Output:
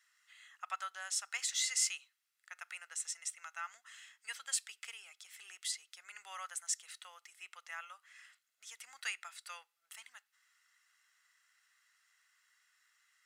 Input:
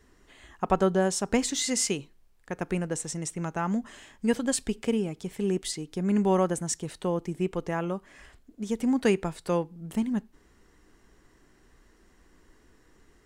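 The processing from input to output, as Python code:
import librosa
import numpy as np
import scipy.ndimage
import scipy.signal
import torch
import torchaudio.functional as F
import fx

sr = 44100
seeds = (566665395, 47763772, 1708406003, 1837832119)

y = scipy.signal.sosfilt(scipy.signal.butter(4, 1400.0, 'highpass', fs=sr, output='sos'), x)
y = y + 0.38 * np.pad(y, (int(1.5 * sr / 1000.0), 0))[:len(y)]
y = y * 10.0 ** (-5.0 / 20.0)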